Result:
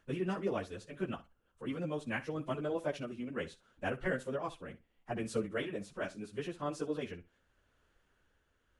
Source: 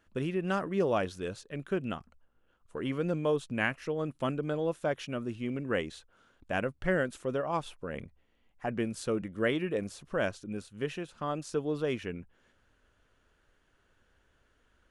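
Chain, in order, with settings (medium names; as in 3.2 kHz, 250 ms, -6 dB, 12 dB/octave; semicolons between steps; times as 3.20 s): plain phase-vocoder stretch 0.59×; flutter echo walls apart 10.4 m, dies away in 0.22 s; tremolo 0.76 Hz, depth 33%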